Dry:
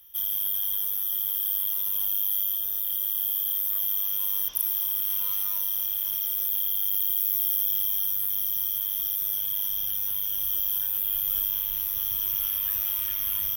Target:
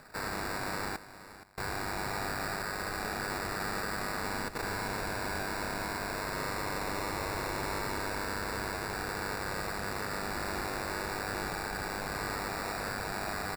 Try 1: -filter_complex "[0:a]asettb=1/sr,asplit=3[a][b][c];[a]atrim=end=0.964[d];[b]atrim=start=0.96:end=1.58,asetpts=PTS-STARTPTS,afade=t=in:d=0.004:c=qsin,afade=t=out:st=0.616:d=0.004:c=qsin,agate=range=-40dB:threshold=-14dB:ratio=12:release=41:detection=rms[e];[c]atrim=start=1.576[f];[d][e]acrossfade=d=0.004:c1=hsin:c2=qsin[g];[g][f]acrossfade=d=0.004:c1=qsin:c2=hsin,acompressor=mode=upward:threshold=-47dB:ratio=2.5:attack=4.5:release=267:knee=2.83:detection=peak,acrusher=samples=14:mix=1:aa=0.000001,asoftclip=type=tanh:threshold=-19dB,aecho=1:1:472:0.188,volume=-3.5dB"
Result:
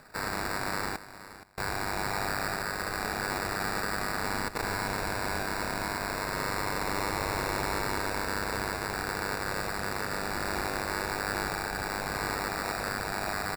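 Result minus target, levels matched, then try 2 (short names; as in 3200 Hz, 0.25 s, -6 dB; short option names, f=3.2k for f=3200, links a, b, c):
soft clip: distortion -8 dB
-filter_complex "[0:a]asettb=1/sr,asplit=3[a][b][c];[a]atrim=end=0.964[d];[b]atrim=start=0.96:end=1.58,asetpts=PTS-STARTPTS,afade=t=in:d=0.004:c=qsin,afade=t=out:st=0.616:d=0.004:c=qsin,agate=range=-40dB:threshold=-14dB:ratio=12:release=41:detection=rms[e];[c]atrim=start=1.576[f];[d][e]acrossfade=d=0.004:c1=hsin:c2=qsin[g];[g][f]acrossfade=d=0.004:c1=qsin:c2=hsin,acompressor=mode=upward:threshold=-47dB:ratio=2.5:attack=4.5:release=267:knee=2.83:detection=peak,acrusher=samples=14:mix=1:aa=0.000001,asoftclip=type=tanh:threshold=-27dB,aecho=1:1:472:0.188,volume=-3.5dB"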